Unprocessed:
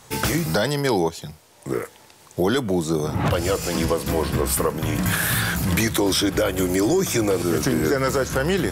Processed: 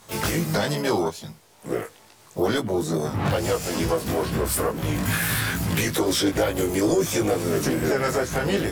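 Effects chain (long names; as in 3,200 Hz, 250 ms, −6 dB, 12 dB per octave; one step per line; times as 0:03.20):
pitch-shifted copies added +4 semitones −10 dB, +7 semitones −10 dB
chorus effect 2.3 Hz, delay 18 ms, depth 2.3 ms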